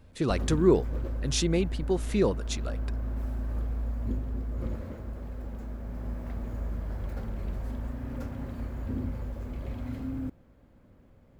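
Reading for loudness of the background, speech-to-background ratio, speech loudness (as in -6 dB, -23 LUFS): -36.0 LUFS, 8.0 dB, -28.0 LUFS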